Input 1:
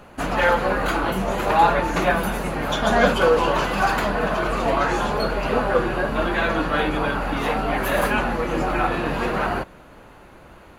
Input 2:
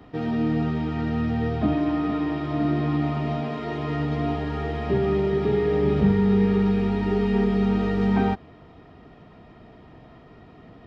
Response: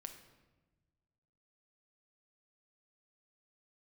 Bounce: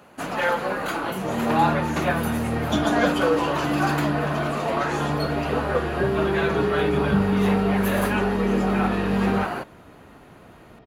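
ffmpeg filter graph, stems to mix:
-filter_complex "[0:a]highpass=120,highshelf=frequency=6300:gain=4.5,volume=-4.5dB[link_01];[1:a]adelay=1100,volume=-1.5dB[link_02];[link_01][link_02]amix=inputs=2:normalize=0"

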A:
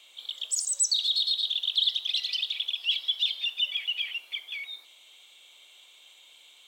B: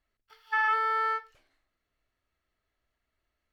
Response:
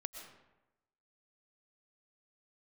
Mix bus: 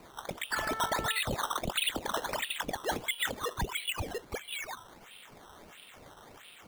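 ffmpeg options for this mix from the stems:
-filter_complex "[0:a]bandreject=frequency=259.3:width_type=h:width=4,bandreject=frequency=518.6:width_type=h:width=4,bandreject=frequency=777.9:width_type=h:width=4,bandreject=frequency=1037.2:width_type=h:width=4,bandreject=frequency=1296.5:width_type=h:width=4,bandreject=frequency=1555.8:width_type=h:width=4,bandreject=frequency=1815.1:width_type=h:width=4,bandreject=frequency=2074.4:width_type=h:width=4,bandreject=frequency=2333.7:width_type=h:width=4,bandreject=frequency=2593:width_type=h:width=4,bandreject=frequency=2852.3:width_type=h:width=4,bandreject=frequency=3111.6:width_type=h:width=4,bandreject=frequency=3370.9:width_type=h:width=4,bandreject=frequency=3630.2:width_type=h:width=4,bandreject=frequency=3889.5:width_type=h:width=4,bandreject=frequency=4148.8:width_type=h:width=4,bandreject=frequency=4408.1:width_type=h:width=4,bandreject=frequency=4667.4:width_type=h:width=4,bandreject=frequency=4926.7:width_type=h:width=4,bandreject=frequency=5186:width_type=h:width=4,bandreject=frequency=5445.3:width_type=h:width=4,bandreject=frequency=5704.6:width_type=h:width=4,bandreject=frequency=5963.9:width_type=h:width=4,bandreject=frequency=6223.2:width_type=h:width=4,bandreject=frequency=6482.5:width_type=h:width=4,bandreject=frequency=6741.8:width_type=h:width=4,bandreject=frequency=7001.1:width_type=h:width=4,bandreject=frequency=7260.4:width_type=h:width=4,bandreject=frequency=7519.7:width_type=h:width=4,bandreject=frequency=7779:width_type=h:width=4,bandreject=frequency=8038.3:width_type=h:width=4,bandreject=frequency=8297.6:width_type=h:width=4,bandreject=frequency=8556.9:width_type=h:width=4,bandreject=frequency=8816.2:width_type=h:width=4,bandreject=frequency=9075.5:width_type=h:width=4,bandreject=frequency=9334.8:width_type=h:width=4,bandreject=frequency=9594.1:width_type=h:width=4,bandreject=frequency=9853.4:width_type=h:width=4,acrusher=samples=13:mix=1:aa=0.000001:lfo=1:lforange=13:lforate=1.5,volume=2dB[link_01];[1:a]volume=-5.5dB[link_02];[link_01][link_02]amix=inputs=2:normalize=0,acompressor=threshold=-42dB:ratio=1.5"

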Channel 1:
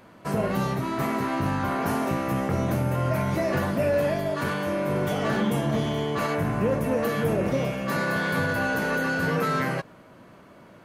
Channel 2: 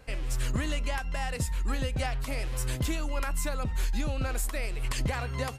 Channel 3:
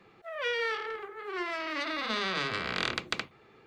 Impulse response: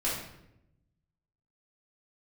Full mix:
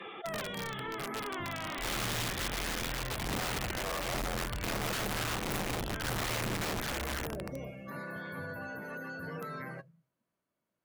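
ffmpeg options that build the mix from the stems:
-filter_complex "[0:a]aemphasis=mode=production:type=75kf,volume=-16.5dB,asplit=2[link_01][link_02];[link_02]volume=-21.5dB[link_03];[1:a]firequalizer=gain_entry='entry(120,0);entry(280,-22);entry(450,-4);entry(670,-19);entry(1400,7);entry(3800,-8)':delay=0.05:min_phase=1,adelay=1700,volume=-8dB,asplit=2[link_04][link_05];[link_05]volume=-10dB[link_06];[2:a]acompressor=threshold=-42dB:ratio=2.5,lowpass=frequency=3400:width_type=q:width=7.6,asplit=2[link_07][link_08];[link_08]highpass=frequency=720:poles=1,volume=28dB,asoftclip=type=tanh:threshold=-13.5dB[link_09];[link_07][link_09]amix=inputs=2:normalize=0,lowpass=frequency=1200:poles=1,volume=-6dB,volume=-1.5dB[link_10];[link_04][link_10]amix=inputs=2:normalize=0,highshelf=frequency=5100:gain=8.5,acompressor=threshold=-37dB:ratio=8,volume=0dB[link_11];[3:a]atrim=start_sample=2205[link_12];[link_03][link_06]amix=inputs=2:normalize=0[link_13];[link_13][link_12]afir=irnorm=-1:irlink=0[link_14];[link_01][link_11][link_14]amix=inputs=3:normalize=0,afftdn=noise_reduction=22:noise_floor=-45,acrossover=split=2800[link_15][link_16];[link_16]acompressor=threshold=-59dB:ratio=4:attack=1:release=60[link_17];[link_15][link_17]amix=inputs=2:normalize=0,aeval=exprs='(mod(31.6*val(0)+1,2)-1)/31.6':channel_layout=same"

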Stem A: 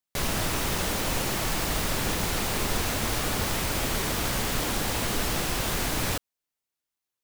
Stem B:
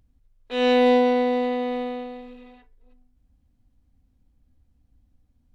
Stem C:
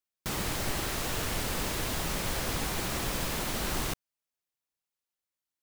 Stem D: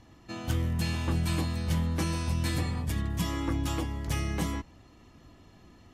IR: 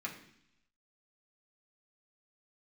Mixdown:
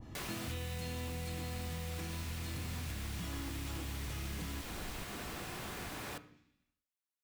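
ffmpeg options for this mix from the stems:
-filter_complex "[0:a]highpass=48,volume=-12dB,asplit=2[link_01][link_02];[link_02]volume=-6dB[link_03];[1:a]acompressor=threshold=-24dB:ratio=6,volume=-2.5dB[link_04];[2:a]adelay=1100,volume=-11.5dB[link_05];[3:a]volume=0dB[link_06];[link_05][link_06]amix=inputs=2:normalize=0,lowshelf=frequency=350:gain=11.5,alimiter=limit=-20dB:level=0:latency=1,volume=0dB[link_07];[link_01][link_04]amix=inputs=2:normalize=0,alimiter=level_in=4dB:limit=-24dB:level=0:latency=1,volume=-4dB,volume=0dB[link_08];[4:a]atrim=start_sample=2205[link_09];[link_03][link_09]afir=irnorm=-1:irlink=0[link_10];[link_07][link_08][link_10]amix=inputs=3:normalize=0,lowshelf=frequency=430:gain=-4,acrossover=split=2000|4300[link_11][link_12][link_13];[link_11]acompressor=threshold=-41dB:ratio=4[link_14];[link_12]acompressor=threshold=-47dB:ratio=4[link_15];[link_13]acompressor=threshold=-46dB:ratio=4[link_16];[link_14][link_15][link_16]amix=inputs=3:normalize=0,adynamicequalizer=threshold=0.00158:dfrequency=1800:dqfactor=0.7:tfrequency=1800:tqfactor=0.7:attack=5:release=100:ratio=0.375:range=2:mode=cutabove:tftype=highshelf"

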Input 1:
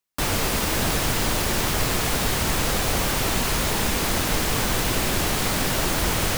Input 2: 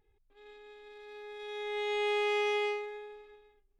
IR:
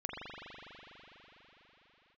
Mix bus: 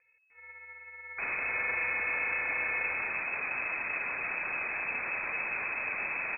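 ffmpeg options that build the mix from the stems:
-filter_complex "[0:a]alimiter=limit=-17dB:level=0:latency=1:release=15,adelay=1000,volume=-7dB[link_01];[1:a]equalizer=frequency=730:width_type=o:width=2:gain=7.5,alimiter=level_in=5dB:limit=-24dB:level=0:latency=1,volume=-5dB,acrusher=samples=15:mix=1:aa=0.000001,volume=0dB[link_02];[link_01][link_02]amix=inputs=2:normalize=0,lowpass=frequency=2200:width_type=q:width=0.5098,lowpass=frequency=2200:width_type=q:width=0.6013,lowpass=frequency=2200:width_type=q:width=0.9,lowpass=frequency=2200:width_type=q:width=2.563,afreqshift=-2600"

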